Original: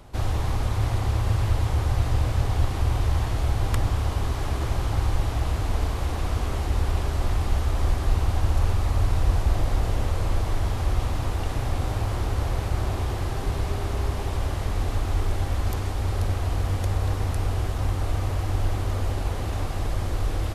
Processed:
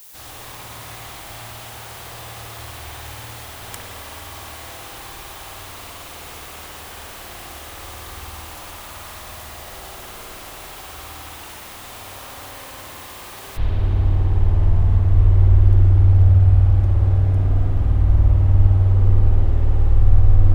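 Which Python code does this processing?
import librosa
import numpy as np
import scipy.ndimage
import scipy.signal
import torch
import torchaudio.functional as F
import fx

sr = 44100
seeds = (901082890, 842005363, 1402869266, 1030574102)

y = fx.quant_dither(x, sr, seeds[0], bits=8, dither='triangular')
y = fx.tilt_eq(y, sr, slope=fx.steps((0.0, 4.0), (13.56, -3.0)))
y = fx.rev_spring(y, sr, rt60_s=3.5, pass_ms=(53,), chirp_ms=60, drr_db=-4.5)
y = y * librosa.db_to_amplitude(-9.0)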